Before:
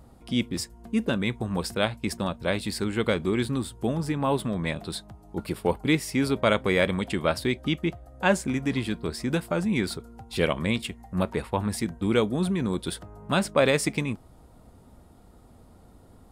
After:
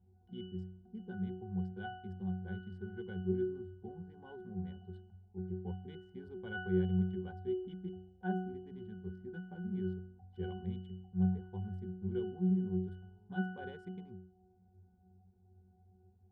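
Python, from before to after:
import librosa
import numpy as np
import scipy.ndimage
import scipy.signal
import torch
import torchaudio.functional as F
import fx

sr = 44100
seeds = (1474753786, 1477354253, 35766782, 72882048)

y = fx.wiener(x, sr, points=15)
y = fx.octave_resonator(y, sr, note='F#', decay_s=0.67)
y = y * librosa.db_to_amplitude(3.0)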